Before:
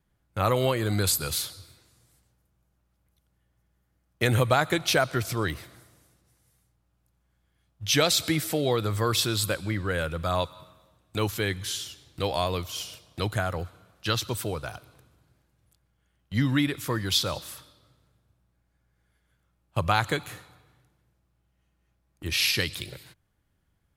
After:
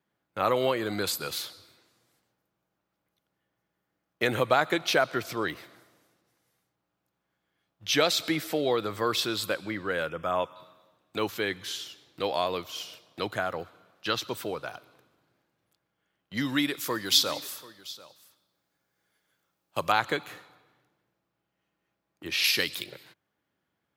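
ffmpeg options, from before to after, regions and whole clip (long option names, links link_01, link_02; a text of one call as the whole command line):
ffmpeg -i in.wav -filter_complex "[0:a]asettb=1/sr,asplit=3[link_01][link_02][link_03];[link_01]atrim=end=10.094[link_04];[link_02]atrim=start=10.09:end=10.56,asetpts=PTS-STARTPTS,afade=type=in:duration=0.004:curve=qsin,afade=type=out:start_time=0.466:duration=0.004:curve=qsin,asuperstop=centerf=4200:order=8:qfactor=2.5,highshelf=frequency=7900:gain=-5[link_05];[link_03]atrim=start=10.556[link_06];[link_04][link_05]acrossfade=duration=0.004:curve1=hsin:curve2=qsin[link_07];[link_07][link_06]acrossfade=duration=0.004:curve1=qsin:curve2=hsin,asettb=1/sr,asplit=3[link_08][link_09][link_10];[link_08]atrim=end=16.374[link_11];[link_09]atrim=start=16.37:end=19.92,asetpts=PTS-STARTPTS,afade=type=in:duration=0.004:curve=qsin,afade=type=out:start_time=3.546:duration=0.004:curve=qsin,bass=frequency=250:gain=-2,treble=frequency=4000:gain=11,aecho=1:1:739:0.106,atrim=end_sample=156555[link_12];[link_10]atrim=start=19.916[link_13];[link_11][link_12]acrossfade=duration=0.004:curve1=hsin:curve2=qsin[link_14];[link_14][link_13]acrossfade=duration=0.004:curve1=qsin:curve2=hsin,asettb=1/sr,asplit=3[link_15][link_16][link_17];[link_15]atrim=end=22.444[link_18];[link_16]atrim=start=22.44:end=22.84,asetpts=PTS-STARTPTS,afade=type=in:duration=0.004:curve=qsin,afade=type=out:start_time=0.396:duration=0.004:curve=qsin,highpass=48,highshelf=frequency=6200:gain=11.5[link_19];[link_17]atrim=start=22.836[link_20];[link_18][link_19]acrossfade=duration=0.004:curve1=hsin:curve2=qsin[link_21];[link_21][link_20]acrossfade=duration=0.004:curve1=qsin:curve2=hsin,highpass=250,equalizer=frequency=9600:width_type=o:width=1.2:gain=-10.5" out.wav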